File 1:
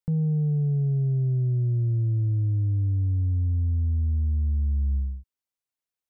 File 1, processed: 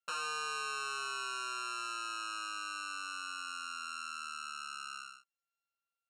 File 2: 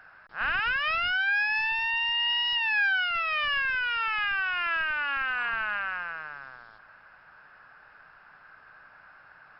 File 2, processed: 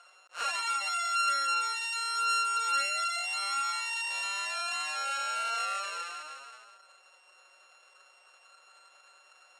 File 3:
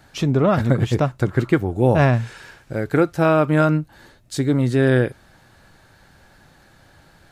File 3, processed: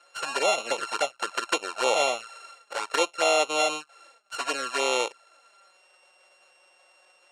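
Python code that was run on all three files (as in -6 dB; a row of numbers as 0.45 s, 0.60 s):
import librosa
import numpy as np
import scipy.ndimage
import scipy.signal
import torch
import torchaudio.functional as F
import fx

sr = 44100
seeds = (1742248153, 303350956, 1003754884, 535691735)

y = np.r_[np.sort(x[:len(x) // 32 * 32].reshape(-1, 32), axis=1).ravel(), x[len(x) // 32 * 32:]]
y = scipy.signal.sosfilt(scipy.signal.ellip(3, 1.0, 70, [520.0, 8600.0], 'bandpass', fs=sr, output='sos'), y)
y = fx.env_flanger(y, sr, rest_ms=5.9, full_db=-19.5)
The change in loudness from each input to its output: -14.0 LU, -4.0 LU, -7.5 LU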